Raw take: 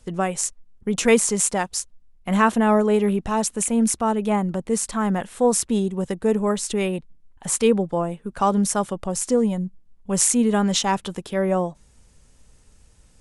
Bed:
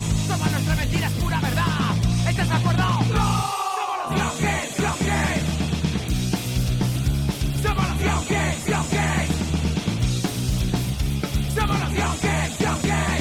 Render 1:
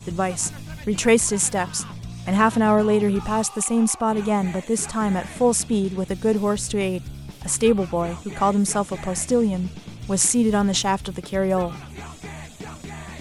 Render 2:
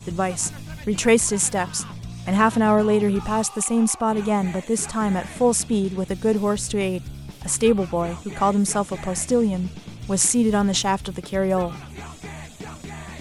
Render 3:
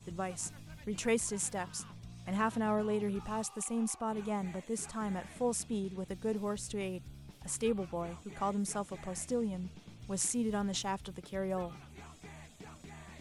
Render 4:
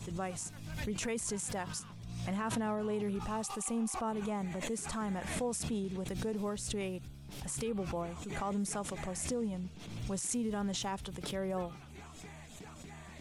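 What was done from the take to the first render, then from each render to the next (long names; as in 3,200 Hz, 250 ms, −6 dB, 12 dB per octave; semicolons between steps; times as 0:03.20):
mix in bed −14.5 dB
no processing that can be heard
level −14.5 dB
brickwall limiter −27.5 dBFS, peak gain reduction 11 dB; background raised ahead of every attack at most 42 dB per second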